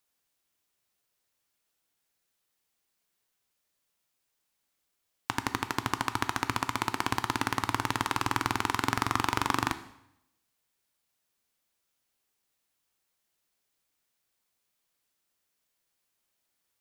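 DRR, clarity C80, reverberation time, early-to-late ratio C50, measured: 10.5 dB, 16.5 dB, 0.80 s, 14.0 dB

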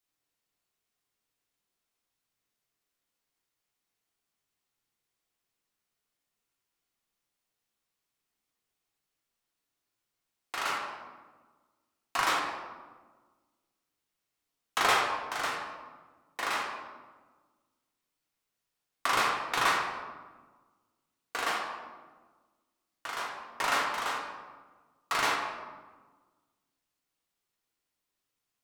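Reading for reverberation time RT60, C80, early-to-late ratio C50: 1.4 s, 4.5 dB, 2.0 dB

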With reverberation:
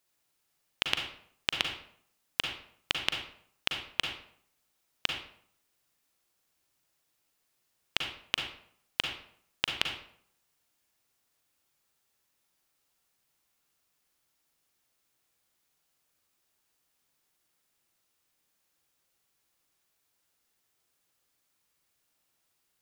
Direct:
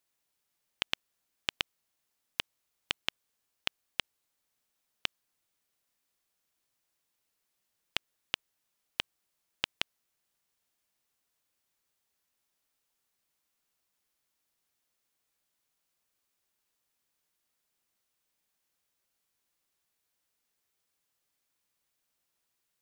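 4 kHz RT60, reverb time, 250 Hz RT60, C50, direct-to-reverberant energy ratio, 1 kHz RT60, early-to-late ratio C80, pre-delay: 0.45 s, 0.60 s, 0.65 s, 4.5 dB, 2.5 dB, 0.60 s, 8.0 dB, 37 ms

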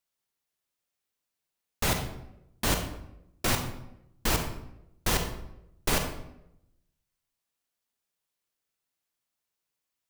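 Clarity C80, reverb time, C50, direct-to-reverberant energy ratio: 9.5 dB, 0.85 s, 6.5 dB, 5.0 dB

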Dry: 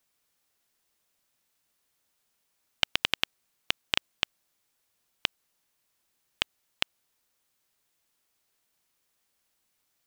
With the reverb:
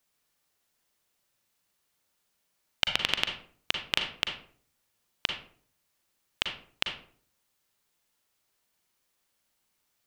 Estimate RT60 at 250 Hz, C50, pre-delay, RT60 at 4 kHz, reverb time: 0.65 s, 6.0 dB, 37 ms, 0.30 s, 0.50 s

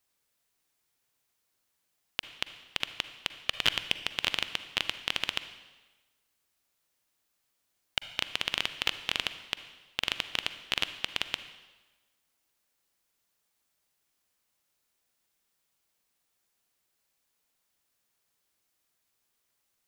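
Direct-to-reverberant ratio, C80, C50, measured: 11.0 dB, 13.5 dB, 11.5 dB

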